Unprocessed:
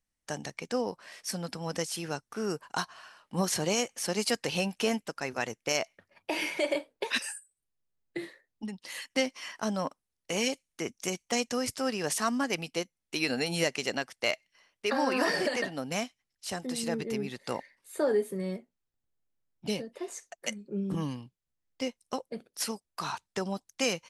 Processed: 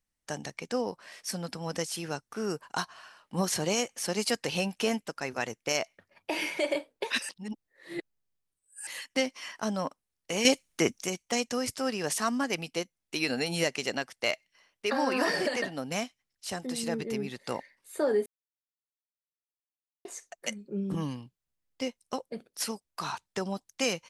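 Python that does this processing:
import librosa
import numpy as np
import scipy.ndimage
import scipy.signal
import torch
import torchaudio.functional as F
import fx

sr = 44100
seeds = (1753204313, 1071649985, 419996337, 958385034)

y = fx.edit(x, sr, fx.reverse_span(start_s=7.29, length_s=1.58),
    fx.clip_gain(start_s=10.45, length_s=0.57, db=9.0),
    fx.silence(start_s=18.26, length_s=1.79), tone=tone)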